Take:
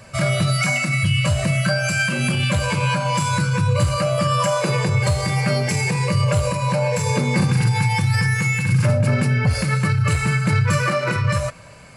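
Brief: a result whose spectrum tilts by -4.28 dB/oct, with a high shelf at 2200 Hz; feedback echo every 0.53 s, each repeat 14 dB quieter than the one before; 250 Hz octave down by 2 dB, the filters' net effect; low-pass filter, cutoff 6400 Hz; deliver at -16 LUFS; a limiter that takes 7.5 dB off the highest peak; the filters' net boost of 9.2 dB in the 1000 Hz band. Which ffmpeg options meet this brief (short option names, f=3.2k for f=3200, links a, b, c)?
-af "lowpass=6.4k,equalizer=f=250:t=o:g=-4.5,equalizer=f=1k:t=o:g=9,highshelf=f=2.2k:g=8,alimiter=limit=-10dB:level=0:latency=1,aecho=1:1:530|1060:0.2|0.0399,volume=2dB"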